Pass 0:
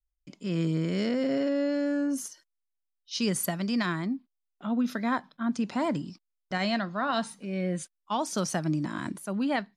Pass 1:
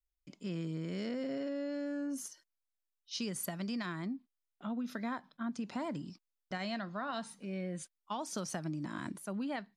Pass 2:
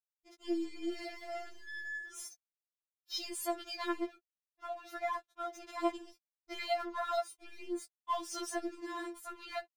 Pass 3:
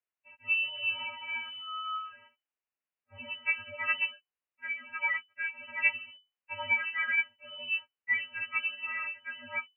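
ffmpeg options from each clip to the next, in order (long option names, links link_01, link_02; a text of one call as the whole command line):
ffmpeg -i in.wav -af "acompressor=threshold=-29dB:ratio=6,volume=-5.5dB" out.wav
ffmpeg -i in.wav -af "aeval=exprs='sgn(val(0))*max(abs(val(0))-0.00211,0)':channel_layout=same,afftfilt=real='re*4*eq(mod(b,16),0)':imag='im*4*eq(mod(b,16),0)':win_size=2048:overlap=0.75,volume=5.5dB" out.wav
ffmpeg -i in.wav -af "lowpass=frequency=2600:width_type=q:width=0.5098,lowpass=frequency=2600:width_type=q:width=0.6013,lowpass=frequency=2600:width_type=q:width=0.9,lowpass=frequency=2600:width_type=q:width=2.563,afreqshift=-3000,volume=5.5dB" out.wav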